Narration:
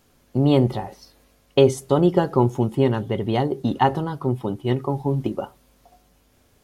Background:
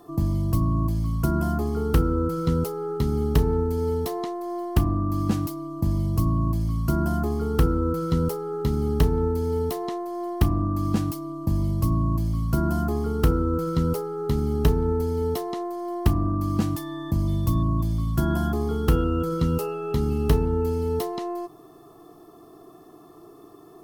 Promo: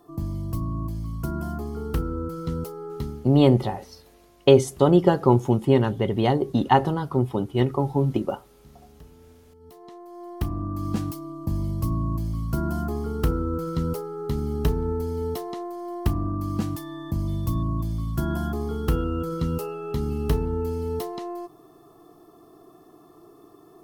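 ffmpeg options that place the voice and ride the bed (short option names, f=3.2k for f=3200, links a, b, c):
-filter_complex "[0:a]adelay=2900,volume=0.5dB[a];[1:a]volume=19dB,afade=t=out:st=3.01:d=0.27:silence=0.0794328,afade=t=in:st=9.59:d=1.39:silence=0.0562341[b];[a][b]amix=inputs=2:normalize=0"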